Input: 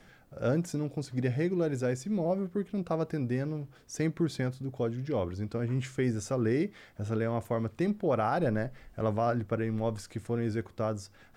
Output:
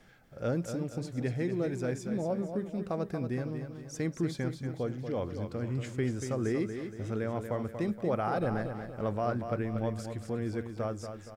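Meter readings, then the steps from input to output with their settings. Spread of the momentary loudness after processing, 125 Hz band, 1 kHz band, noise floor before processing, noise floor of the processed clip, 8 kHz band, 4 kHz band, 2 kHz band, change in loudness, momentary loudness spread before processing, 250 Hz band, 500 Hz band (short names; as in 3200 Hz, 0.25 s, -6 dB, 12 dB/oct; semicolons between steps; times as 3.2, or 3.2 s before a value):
5 LU, -2.0 dB, -2.0 dB, -58 dBFS, -48 dBFS, -2.0 dB, -2.0 dB, -2.0 dB, -2.0 dB, 6 LU, -2.0 dB, -2.0 dB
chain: feedback echo 0.235 s, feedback 45%, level -8 dB; gain -3 dB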